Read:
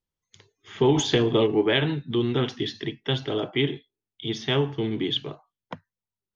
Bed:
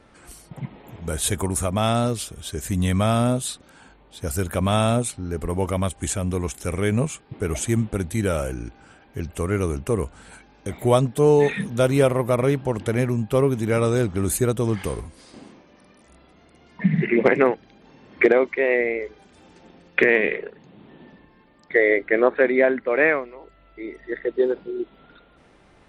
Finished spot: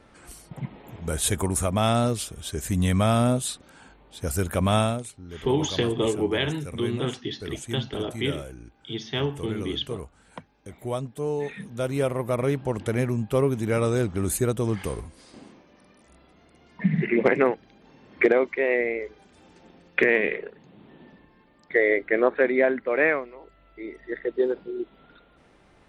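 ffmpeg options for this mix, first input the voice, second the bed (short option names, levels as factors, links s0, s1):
-filter_complex "[0:a]adelay=4650,volume=0.668[s0];[1:a]volume=2.51,afade=t=out:st=4.78:d=0.21:silence=0.281838,afade=t=in:st=11.54:d=1.18:silence=0.354813[s1];[s0][s1]amix=inputs=2:normalize=0"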